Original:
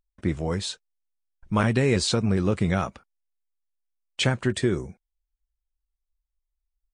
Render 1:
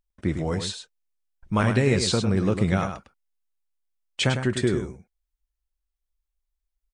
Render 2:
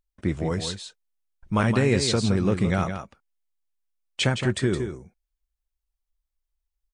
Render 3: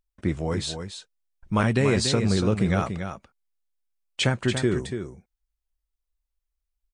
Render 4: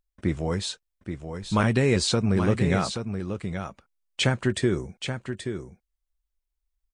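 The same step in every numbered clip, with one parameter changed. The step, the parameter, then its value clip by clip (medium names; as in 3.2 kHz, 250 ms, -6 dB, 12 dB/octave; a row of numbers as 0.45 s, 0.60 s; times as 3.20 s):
delay, time: 103 ms, 166 ms, 286 ms, 828 ms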